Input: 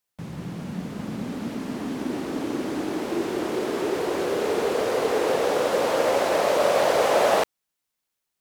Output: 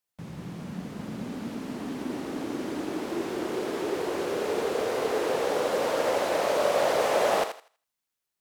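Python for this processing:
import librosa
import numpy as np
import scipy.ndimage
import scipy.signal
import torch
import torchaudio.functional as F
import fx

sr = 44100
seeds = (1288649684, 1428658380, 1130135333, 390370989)

y = fx.echo_thinned(x, sr, ms=81, feedback_pct=27, hz=500.0, wet_db=-7.5)
y = F.gain(torch.from_numpy(y), -4.5).numpy()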